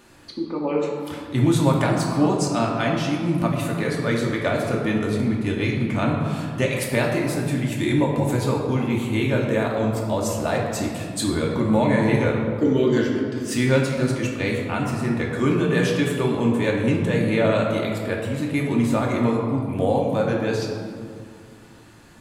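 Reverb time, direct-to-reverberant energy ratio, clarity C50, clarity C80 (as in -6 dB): 2.2 s, -2.0 dB, 2.0 dB, 3.5 dB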